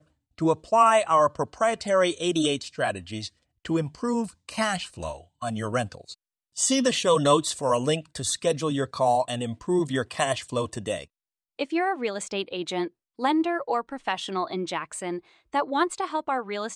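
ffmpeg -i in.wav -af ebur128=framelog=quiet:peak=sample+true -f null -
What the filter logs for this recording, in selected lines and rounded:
Integrated loudness:
  I:         -26.0 LUFS
  Threshold: -36.3 LUFS
Loudness range:
  LRA:         6.0 LU
  Threshold: -46.7 LUFS
  LRA low:   -29.7 LUFS
  LRA high:  -23.8 LUFS
Sample peak:
  Peak:       -8.0 dBFS
True peak:
  Peak:       -8.0 dBFS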